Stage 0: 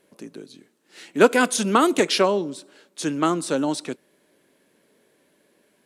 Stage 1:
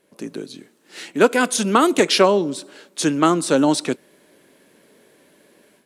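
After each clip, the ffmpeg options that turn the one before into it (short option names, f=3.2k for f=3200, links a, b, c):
-af "dynaudnorm=f=120:g=3:m=9.5dB,volume=-1dB"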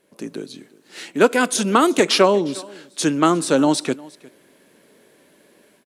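-af "aecho=1:1:356:0.075"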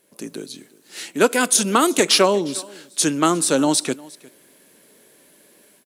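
-af "crystalizer=i=2:c=0,volume=-2dB"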